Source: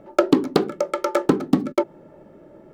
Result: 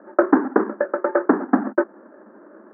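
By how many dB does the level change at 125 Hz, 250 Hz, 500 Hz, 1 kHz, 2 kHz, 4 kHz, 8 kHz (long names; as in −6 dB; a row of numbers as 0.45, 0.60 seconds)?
can't be measured, +1.0 dB, +0.5 dB, +3.0 dB, +6.0 dB, below −35 dB, below −40 dB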